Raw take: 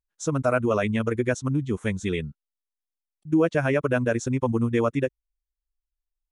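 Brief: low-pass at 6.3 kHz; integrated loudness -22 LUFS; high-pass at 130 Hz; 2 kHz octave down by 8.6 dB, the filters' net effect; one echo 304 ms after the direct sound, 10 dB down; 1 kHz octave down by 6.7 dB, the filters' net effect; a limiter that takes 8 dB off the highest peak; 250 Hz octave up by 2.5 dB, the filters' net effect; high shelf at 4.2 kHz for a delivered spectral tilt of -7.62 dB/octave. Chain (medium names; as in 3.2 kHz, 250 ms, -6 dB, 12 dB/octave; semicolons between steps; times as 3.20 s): high-pass 130 Hz; low-pass 6.3 kHz; peaking EQ 250 Hz +4 dB; peaking EQ 1 kHz -6.5 dB; peaking EQ 2 kHz -7.5 dB; treble shelf 4.2 kHz -8.5 dB; peak limiter -19 dBFS; delay 304 ms -10 dB; trim +6.5 dB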